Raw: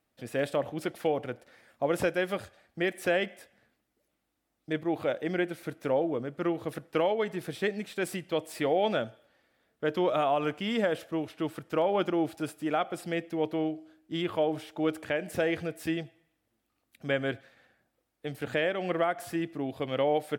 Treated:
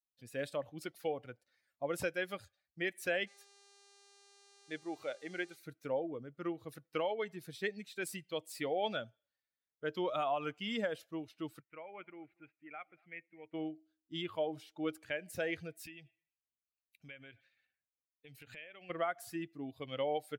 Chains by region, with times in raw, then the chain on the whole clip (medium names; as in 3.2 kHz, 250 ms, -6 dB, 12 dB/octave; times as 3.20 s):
3.26–5.55 s: bass shelf 170 Hz -11 dB + mains buzz 400 Hz, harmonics 25, -50 dBFS -5 dB/octave
11.60–13.54 s: four-pole ladder low-pass 2.5 kHz, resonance 60% + delay 236 ms -19.5 dB
15.84–18.90 s: compression 5:1, threshold -38 dBFS + peaking EQ 2.5 kHz +7.5 dB 0.66 oct
whole clip: expander on every frequency bin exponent 1.5; tilt shelf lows -3.5 dB; trim -4.5 dB